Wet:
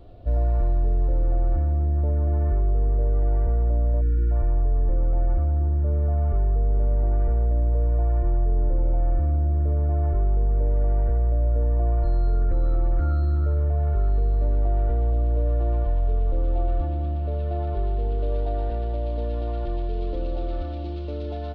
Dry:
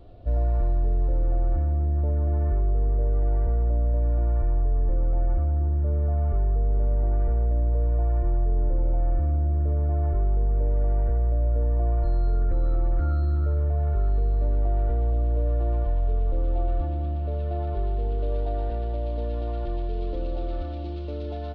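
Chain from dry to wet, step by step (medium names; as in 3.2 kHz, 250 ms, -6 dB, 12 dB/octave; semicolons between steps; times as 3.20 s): spectral selection erased 4.01–4.31 s, 540–1300 Hz; trim +1.5 dB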